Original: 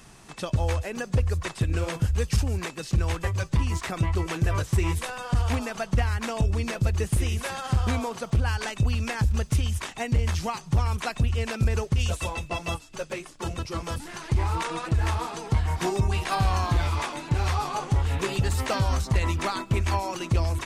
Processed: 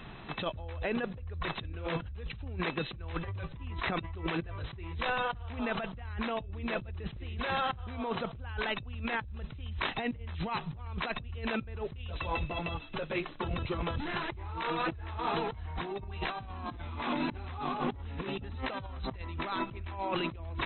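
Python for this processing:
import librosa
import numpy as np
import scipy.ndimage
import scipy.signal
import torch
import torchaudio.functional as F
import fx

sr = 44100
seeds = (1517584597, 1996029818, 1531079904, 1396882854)

y = fx.peak_eq(x, sr, hz=240.0, db=12.0, octaves=0.52, at=(16.42, 18.57))
y = fx.over_compress(y, sr, threshold_db=-34.0, ratio=-1.0)
y = fx.brickwall_lowpass(y, sr, high_hz=4100.0)
y = y * 10.0 ** (-3.0 / 20.0)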